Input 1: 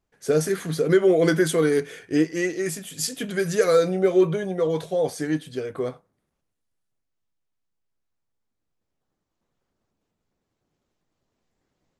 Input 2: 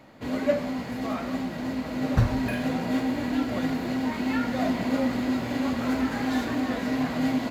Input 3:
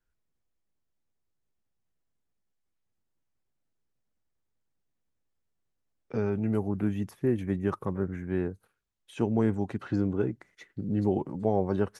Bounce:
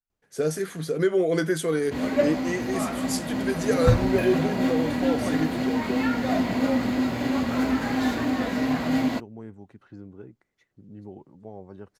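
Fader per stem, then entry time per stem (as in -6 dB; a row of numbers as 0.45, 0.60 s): -4.5, +2.0, -15.5 dB; 0.10, 1.70, 0.00 s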